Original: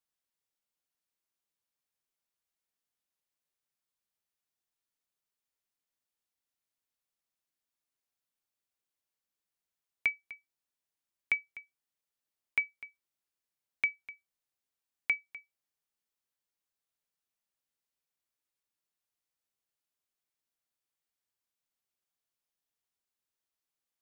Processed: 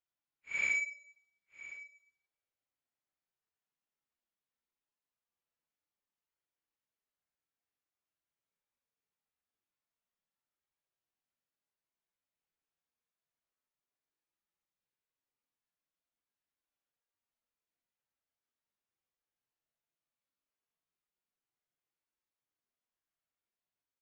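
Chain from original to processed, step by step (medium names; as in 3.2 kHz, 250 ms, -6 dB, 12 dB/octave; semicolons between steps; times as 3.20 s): median filter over 9 samples; resampled via 16 kHz; Paulstretch 4.1×, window 0.10 s, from 14.94 s; trim -2 dB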